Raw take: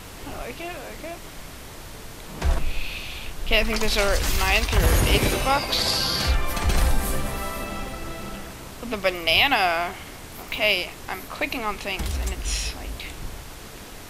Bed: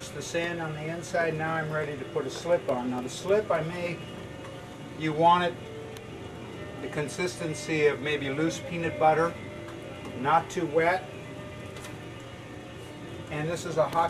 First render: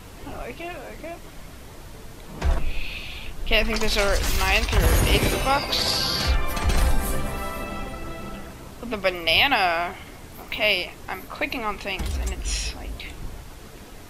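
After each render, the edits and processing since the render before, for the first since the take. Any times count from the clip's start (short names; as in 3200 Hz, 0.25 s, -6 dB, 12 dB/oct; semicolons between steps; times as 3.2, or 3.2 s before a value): denoiser 6 dB, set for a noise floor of -40 dBFS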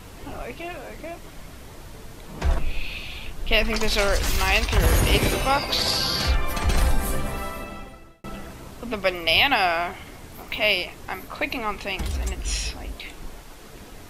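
7.37–8.24 fade out; 12.92–13.7 bell 86 Hz -13 dB 1.3 oct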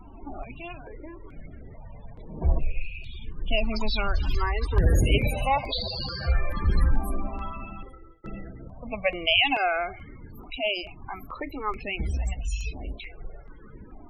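loudest bins only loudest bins 32; step phaser 2.3 Hz 490–5200 Hz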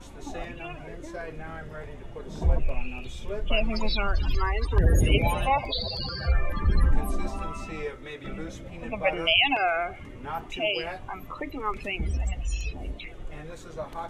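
add bed -11 dB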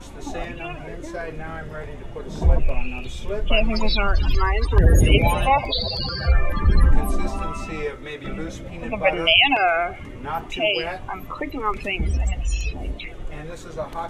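gain +6 dB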